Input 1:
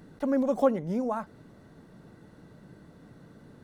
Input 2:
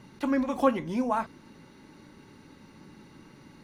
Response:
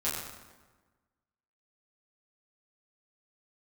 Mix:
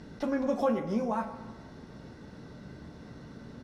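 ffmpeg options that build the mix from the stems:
-filter_complex "[0:a]lowpass=frequency=5200:width_type=q:width=10,acompressor=threshold=-43dB:ratio=1.5,volume=2dB,asplit=2[link_01][link_02];[link_02]volume=-11.5dB[link_03];[1:a]aeval=exprs='val(0)+0.00398*(sin(2*PI*60*n/s)+sin(2*PI*2*60*n/s)/2+sin(2*PI*3*60*n/s)/3+sin(2*PI*4*60*n/s)/4+sin(2*PI*5*60*n/s)/5)':channel_layout=same,volume=-1,adelay=6.3,volume=-11.5dB,asplit=2[link_04][link_05];[link_05]volume=-9dB[link_06];[2:a]atrim=start_sample=2205[link_07];[link_03][link_06]amix=inputs=2:normalize=0[link_08];[link_08][link_07]afir=irnorm=-1:irlink=0[link_09];[link_01][link_04][link_09]amix=inputs=3:normalize=0,equalizer=frequency=5000:width=3.5:gain=-11.5"

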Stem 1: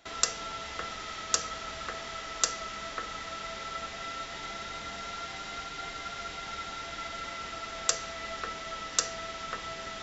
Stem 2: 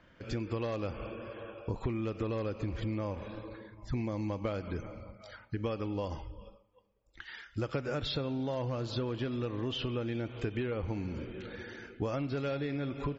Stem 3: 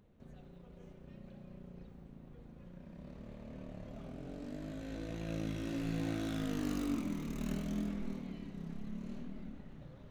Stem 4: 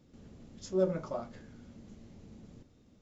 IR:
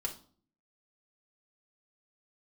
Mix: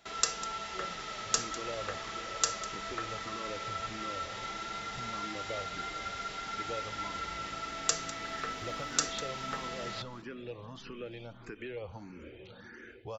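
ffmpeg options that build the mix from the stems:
-filter_complex "[0:a]highpass=42,volume=-6dB,asplit=3[link_01][link_02][link_03];[link_02]volume=-3dB[link_04];[link_03]volume=-12dB[link_05];[1:a]acrossover=split=430|3000[link_06][link_07][link_08];[link_06]acompressor=threshold=-50dB:ratio=2[link_09];[link_09][link_07][link_08]amix=inputs=3:normalize=0,asplit=2[link_10][link_11];[link_11]afreqshift=1.6[link_12];[link_10][link_12]amix=inputs=2:normalize=1,adelay=1050,volume=-1.5dB[link_13];[2:a]adelay=2050,volume=-14.5dB[link_14];[3:a]volume=-18.5dB[link_15];[4:a]atrim=start_sample=2205[link_16];[link_04][link_16]afir=irnorm=-1:irlink=0[link_17];[link_05]aecho=0:1:200:1[link_18];[link_01][link_13][link_14][link_15][link_17][link_18]amix=inputs=6:normalize=0"

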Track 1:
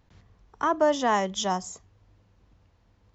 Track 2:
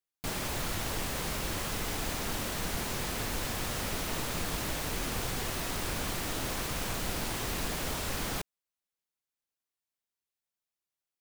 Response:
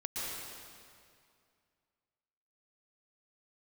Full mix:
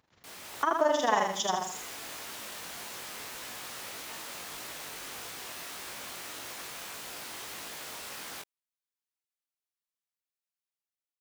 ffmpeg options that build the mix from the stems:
-filter_complex "[0:a]highpass=frequency=480:poles=1,tremolo=f=22:d=0.75,volume=1dB,asplit=3[link_01][link_02][link_03];[link_02]volume=-4dB[link_04];[1:a]flanger=delay=17.5:depth=4.9:speed=1.7,highpass=frequency=840:poles=1,dynaudnorm=framelen=210:gausssize=5:maxgain=6dB,volume=-7.5dB[link_05];[link_03]apad=whole_len=494048[link_06];[link_05][link_06]sidechaincompress=threshold=-37dB:ratio=8:attack=11:release=287[link_07];[link_04]aecho=0:1:79|158|237|316|395:1|0.38|0.144|0.0549|0.0209[link_08];[link_01][link_07][link_08]amix=inputs=3:normalize=0"

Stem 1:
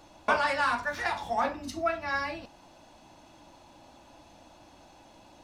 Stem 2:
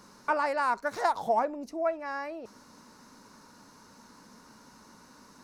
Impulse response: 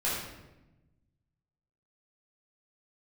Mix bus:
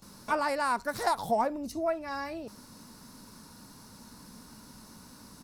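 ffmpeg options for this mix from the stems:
-filter_complex "[0:a]volume=-14dB[link_01];[1:a]equalizer=frequency=6500:width=2.6:gain=-10,volume=-1,adelay=22,volume=-1.5dB,asplit=2[link_02][link_03];[link_03]apad=whole_len=239782[link_04];[link_01][link_04]sidechaincompress=threshold=-35dB:ratio=8:attack=16:release=357[link_05];[link_05][link_02]amix=inputs=2:normalize=0,bass=frequency=250:gain=11,treble=frequency=4000:gain=14"

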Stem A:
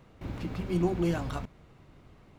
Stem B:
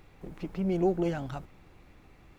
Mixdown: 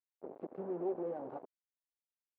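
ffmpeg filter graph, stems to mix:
ffmpeg -i stem1.wav -i stem2.wav -filter_complex "[0:a]alimiter=level_in=2.5dB:limit=-24dB:level=0:latency=1:release=26,volume=-2.5dB,volume=-6dB[link_01];[1:a]alimiter=level_in=2.5dB:limit=-24dB:level=0:latency=1:release=359,volume=-2.5dB,volume=-1.5dB[link_02];[link_01][link_02]amix=inputs=2:normalize=0,acrusher=bits=5:mix=0:aa=0.5,asuperpass=centerf=500:order=4:qfactor=1.1" out.wav

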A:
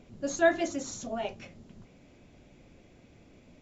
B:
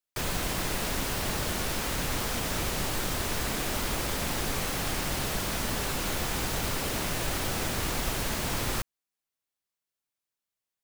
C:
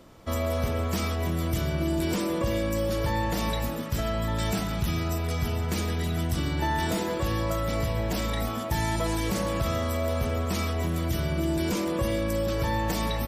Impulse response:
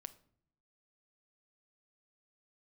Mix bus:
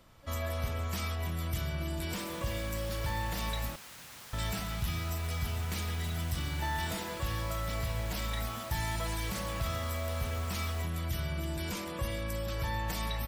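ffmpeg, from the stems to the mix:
-filter_complex "[0:a]volume=-19dB[link_01];[1:a]highpass=130,adelay=2000,volume=-15.5dB[link_02];[2:a]equalizer=frequency=6300:width_type=o:width=0.87:gain=-3,volume=-3.5dB,asplit=3[link_03][link_04][link_05];[link_03]atrim=end=3.76,asetpts=PTS-STARTPTS,afade=type=out:start_time=3.756:duration=0.004:curve=hsin[link_06];[link_04]atrim=start=3.76:end=4.33,asetpts=PTS-STARTPTS,volume=0[link_07];[link_05]atrim=start=4.33,asetpts=PTS-STARTPTS,afade=type=in:duration=0.004:curve=hsin[link_08];[link_06][link_07][link_08]concat=n=3:v=0:a=1[link_09];[link_01][link_02][link_09]amix=inputs=3:normalize=0,equalizer=frequency=340:width=0.61:gain=-11"

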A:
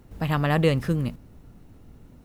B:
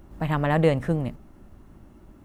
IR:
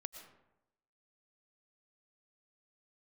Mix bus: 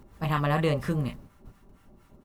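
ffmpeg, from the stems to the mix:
-filter_complex "[0:a]equalizer=frequency=1100:width_type=o:width=0.26:gain=9,volume=0dB[link_01];[1:a]lowshelf=frequency=480:gain=-8.5,aecho=1:1:5.1:0.8,acrossover=split=850[link_02][link_03];[link_02]aeval=exprs='val(0)*(1-1/2+1/2*cos(2*PI*4.2*n/s))':channel_layout=same[link_04];[link_03]aeval=exprs='val(0)*(1-1/2-1/2*cos(2*PI*4.2*n/s))':channel_layout=same[link_05];[link_04][link_05]amix=inputs=2:normalize=0,adelay=28,volume=1dB,asplit=2[link_06][link_07];[link_07]apad=whole_len=99072[link_08];[link_01][link_08]sidechaingate=range=-12dB:threshold=-51dB:ratio=16:detection=peak[link_09];[link_09][link_06]amix=inputs=2:normalize=0,acompressor=threshold=-30dB:ratio=1.5"

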